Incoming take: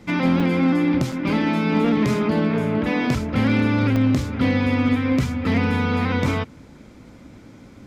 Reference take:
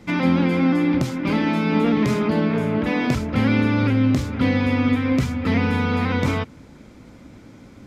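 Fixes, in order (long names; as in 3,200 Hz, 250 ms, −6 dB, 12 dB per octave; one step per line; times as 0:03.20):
clipped peaks rebuilt −12 dBFS
repair the gap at 0:00.40/0:01.12/0:03.96, 4.2 ms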